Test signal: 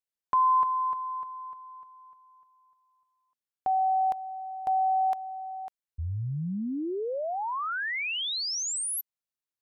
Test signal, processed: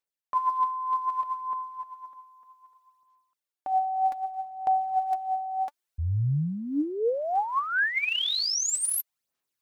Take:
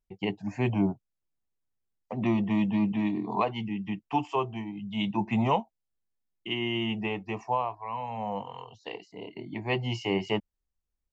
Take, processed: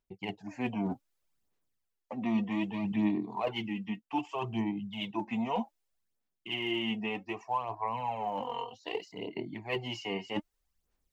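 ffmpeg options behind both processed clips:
-af "lowshelf=f=150:g=-10,areverse,acompressor=threshold=0.02:ratio=6:attack=0.26:release=789:knee=6:detection=rms,areverse,aphaser=in_gain=1:out_gain=1:delay=4.3:decay=0.56:speed=0.64:type=sinusoidal,volume=2.24"

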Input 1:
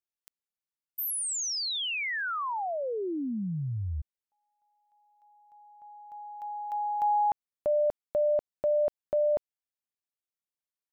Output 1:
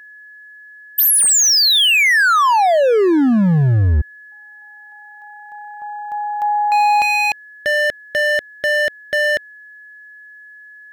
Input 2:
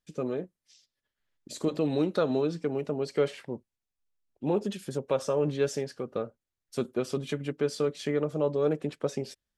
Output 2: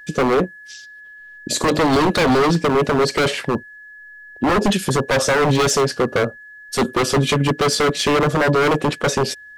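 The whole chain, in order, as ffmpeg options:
-af "apsyclip=15.8,aeval=exprs='0.501*(abs(mod(val(0)/0.501+3,4)-2)-1)':c=same,aeval=exprs='val(0)+0.02*sin(2*PI*1700*n/s)':c=same,volume=0.631"

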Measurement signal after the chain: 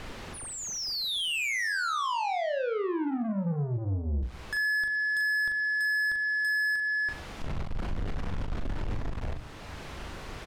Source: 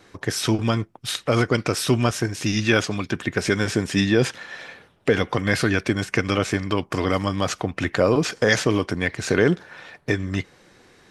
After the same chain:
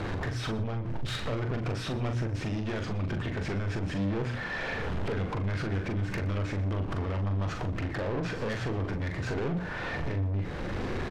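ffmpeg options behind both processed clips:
-filter_complex "[0:a]aeval=exprs='val(0)+0.5*0.0299*sgn(val(0))':c=same,lowpass=f=2100:p=1,aemphasis=mode=reproduction:type=bsi,bandreject=f=60:t=h:w=6,bandreject=f=120:t=h:w=6,bandreject=f=180:t=h:w=6,bandreject=f=240:t=h:w=6,bandreject=f=300:t=h:w=6,acontrast=61,alimiter=limit=0.266:level=0:latency=1:release=467,acompressor=threshold=0.126:ratio=8,asoftclip=type=tanh:threshold=0.0473,asplit=2[s0][s1];[s1]adelay=41,volume=0.501[s2];[s0][s2]amix=inputs=2:normalize=0,asplit=2[s3][s4];[s4]aecho=0:1:120:0.119[s5];[s3][s5]amix=inputs=2:normalize=0,volume=0.708"

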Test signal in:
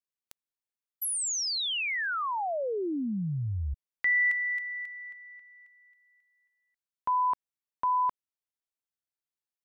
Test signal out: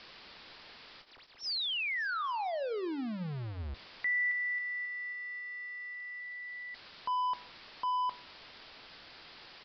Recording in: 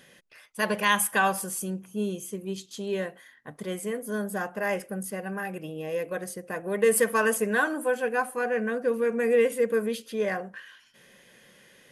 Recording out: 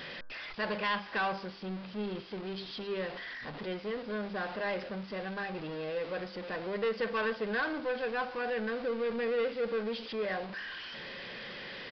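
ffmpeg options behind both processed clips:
-af "aeval=exprs='val(0)+0.5*0.0299*sgn(val(0))':c=same,bandreject=f=98.5:t=h:w=4,bandreject=f=197:t=h:w=4,bandreject=f=295.5:t=h:w=4,bandreject=f=394:t=h:w=4,bandreject=f=492.5:t=h:w=4,bandreject=f=591:t=h:w=4,bandreject=f=689.5:t=h:w=4,bandreject=f=788:t=h:w=4,bandreject=f=886.5:t=h:w=4,bandreject=f=985:t=h:w=4,bandreject=f=1083.5:t=h:w=4,bandreject=f=1182:t=h:w=4,bandreject=f=1280.5:t=h:w=4,bandreject=f=1379:t=h:w=4,bandreject=f=1477.5:t=h:w=4,bandreject=f=1576:t=h:w=4,bandreject=f=1674.5:t=h:w=4,aresample=16000,asoftclip=type=tanh:threshold=0.106,aresample=44100,equalizer=f=89:t=o:w=2.7:g=-4.5,aresample=11025,aresample=44100,volume=0.501"

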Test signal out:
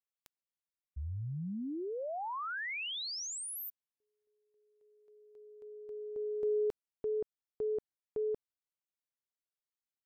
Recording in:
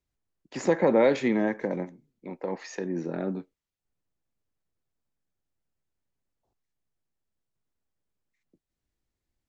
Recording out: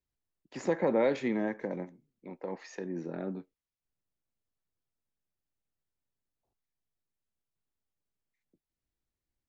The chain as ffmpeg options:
-af "highshelf=f=5900:g=-4,volume=0.501"

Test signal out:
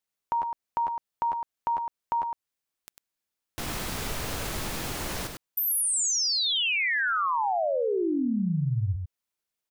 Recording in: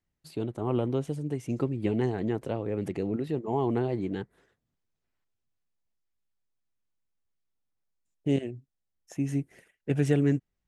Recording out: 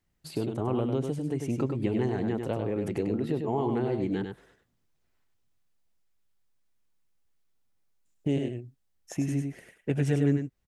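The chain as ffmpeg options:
-filter_complex "[0:a]acompressor=threshold=0.0158:ratio=2,asplit=2[s0][s1];[s1]aecho=0:1:99:0.531[s2];[s0][s2]amix=inputs=2:normalize=0,volume=2"

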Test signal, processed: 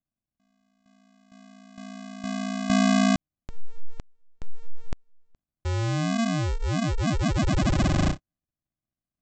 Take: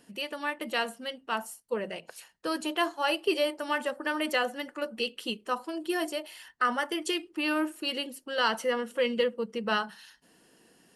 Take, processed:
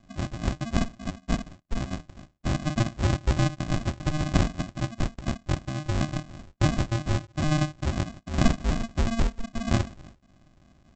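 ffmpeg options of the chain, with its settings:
-af "highshelf=f=2300:g=5,aresample=16000,acrusher=samples=35:mix=1:aa=0.000001,aresample=44100,volume=1.5"

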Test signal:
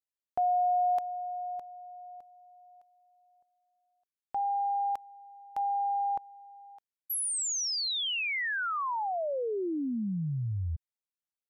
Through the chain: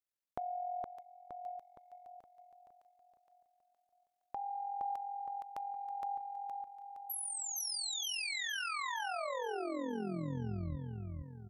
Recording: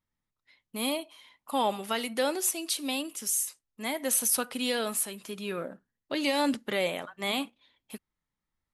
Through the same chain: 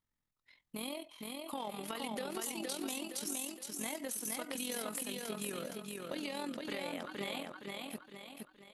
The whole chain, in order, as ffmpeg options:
-filter_complex "[0:a]tremolo=f=43:d=0.621,acompressor=threshold=0.0126:ratio=6:attack=5.7:release=142:knee=1:detection=peak,asplit=2[s0][s1];[s1]aecho=0:1:466|932|1398|1864|2330|2796:0.708|0.319|0.143|0.0645|0.029|0.0131[s2];[s0][s2]amix=inputs=2:normalize=0"

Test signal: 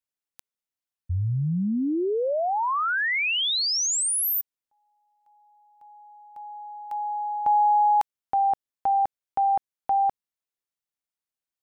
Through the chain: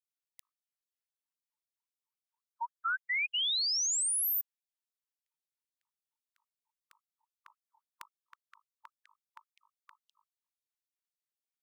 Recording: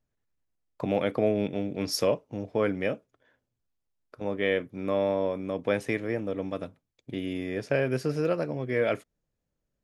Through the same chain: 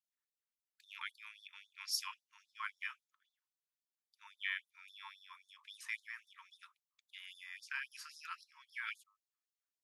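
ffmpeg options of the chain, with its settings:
-af "bandreject=f=51.37:t=h:w=4,bandreject=f=102.74:t=h:w=4,bandreject=f=154.11:t=h:w=4,bandreject=f=205.48:t=h:w=4,bandreject=f=256.85:t=h:w=4,bandreject=f=308.22:t=h:w=4,bandreject=f=359.59:t=h:w=4,bandreject=f=410.96:t=h:w=4,bandreject=f=462.33:t=h:w=4,bandreject=f=513.7:t=h:w=4,bandreject=f=565.07:t=h:w=4,bandreject=f=616.44:t=h:w=4,bandreject=f=667.81:t=h:w=4,bandreject=f=719.18:t=h:w=4,bandreject=f=770.55:t=h:w=4,bandreject=f=821.92:t=h:w=4,bandreject=f=873.29:t=h:w=4,bandreject=f=924.66:t=h:w=4,bandreject=f=976.03:t=h:w=4,bandreject=f=1027.4:t=h:w=4,bandreject=f=1078.77:t=h:w=4,bandreject=f=1130.14:t=h:w=4,bandreject=f=1181.51:t=h:w=4,bandreject=f=1232.88:t=h:w=4,bandreject=f=1284.25:t=h:w=4,afftfilt=real='re*gte(b*sr/1024,880*pow(3500/880,0.5+0.5*sin(2*PI*3.7*pts/sr)))':imag='im*gte(b*sr/1024,880*pow(3500/880,0.5+0.5*sin(2*PI*3.7*pts/sr)))':win_size=1024:overlap=0.75,volume=0.501"

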